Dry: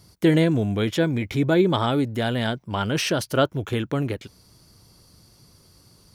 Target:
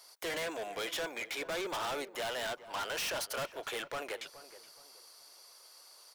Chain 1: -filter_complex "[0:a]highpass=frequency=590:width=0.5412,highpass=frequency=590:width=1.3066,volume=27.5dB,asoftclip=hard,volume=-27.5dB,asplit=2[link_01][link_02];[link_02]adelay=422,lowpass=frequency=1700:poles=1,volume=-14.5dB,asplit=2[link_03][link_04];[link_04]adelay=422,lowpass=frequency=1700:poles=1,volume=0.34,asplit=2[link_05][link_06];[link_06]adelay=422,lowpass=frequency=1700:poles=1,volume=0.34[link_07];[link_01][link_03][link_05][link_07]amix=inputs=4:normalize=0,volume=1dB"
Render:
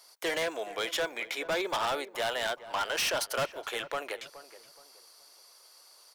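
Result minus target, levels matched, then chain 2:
gain into a clipping stage and back: distortion −4 dB
-filter_complex "[0:a]highpass=frequency=590:width=0.5412,highpass=frequency=590:width=1.3066,volume=35.5dB,asoftclip=hard,volume=-35.5dB,asplit=2[link_01][link_02];[link_02]adelay=422,lowpass=frequency=1700:poles=1,volume=-14.5dB,asplit=2[link_03][link_04];[link_04]adelay=422,lowpass=frequency=1700:poles=1,volume=0.34,asplit=2[link_05][link_06];[link_06]adelay=422,lowpass=frequency=1700:poles=1,volume=0.34[link_07];[link_01][link_03][link_05][link_07]amix=inputs=4:normalize=0,volume=1dB"

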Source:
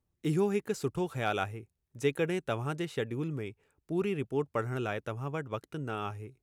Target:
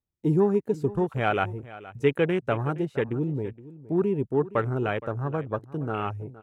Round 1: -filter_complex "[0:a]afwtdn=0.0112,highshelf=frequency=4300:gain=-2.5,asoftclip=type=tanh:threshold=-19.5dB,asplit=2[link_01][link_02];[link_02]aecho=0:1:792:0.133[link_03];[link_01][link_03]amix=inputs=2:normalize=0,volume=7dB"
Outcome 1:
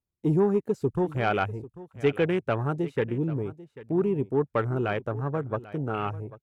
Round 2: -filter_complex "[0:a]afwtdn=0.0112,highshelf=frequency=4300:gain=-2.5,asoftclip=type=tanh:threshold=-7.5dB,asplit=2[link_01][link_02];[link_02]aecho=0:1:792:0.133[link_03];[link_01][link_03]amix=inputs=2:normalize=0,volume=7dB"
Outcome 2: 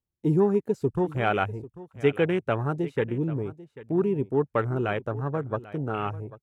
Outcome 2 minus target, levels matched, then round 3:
echo 324 ms late
-filter_complex "[0:a]afwtdn=0.0112,highshelf=frequency=4300:gain=-2.5,asoftclip=type=tanh:threshold=-7.5dB,asplit=2[link_01][link_02];[link_02]aecho=0:1:468:0.133[link_03];[link_01][link_03]amix=inputs=2:normalize=0,volume=7dB"

